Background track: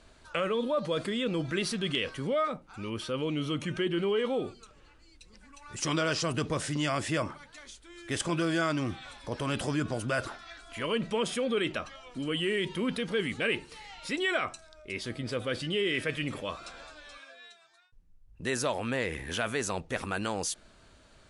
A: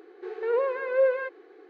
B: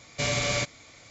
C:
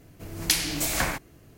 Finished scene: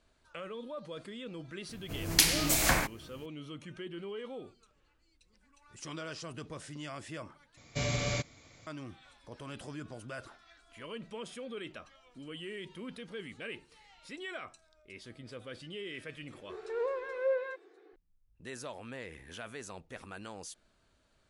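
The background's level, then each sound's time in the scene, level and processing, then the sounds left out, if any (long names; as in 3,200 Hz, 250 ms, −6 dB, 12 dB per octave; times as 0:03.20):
background track −13 dB
0:01.69: mix in C −0.5 dB
0:07.57: overwrite with B −8.5 dB + low-shelf EQ 410 Hz +8 dB
0:16.27: mix in A −8.5 dB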